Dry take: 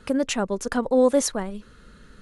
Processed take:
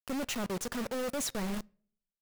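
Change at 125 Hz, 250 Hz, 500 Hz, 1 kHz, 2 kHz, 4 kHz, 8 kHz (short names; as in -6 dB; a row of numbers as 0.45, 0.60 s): n/a, -11.5 dB, -15.5 dB, -11.0 dB, -7.0 dB, -6.0 dB, -8.0 dB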